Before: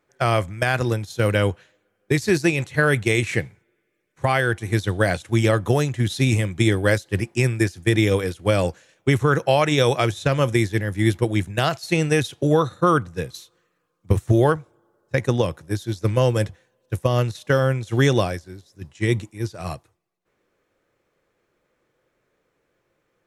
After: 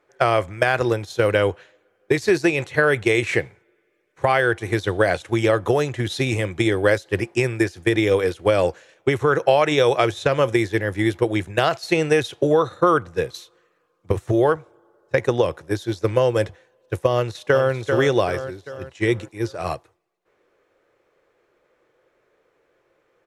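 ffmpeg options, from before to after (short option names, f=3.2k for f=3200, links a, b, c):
-filter_complex "[0:a]asplit=2[a][b];[b]afade=t=in:st=17.15:d=0.01,afade=t=out:st=17.72:d=0.01,aecho=0:1:390|780|1170|1560|1950:0.375837|0.169127|0.0761071|0.0342482|0.0154117[c];[a][c]amix=inputs=2:normalize=0,aemphasis=mode=reproduction:type=cd,acompressor=threshold=-19dB:ratio=3,lowshelf=f=300:t=q:w=1.5:g=-7,volume=5.5dB"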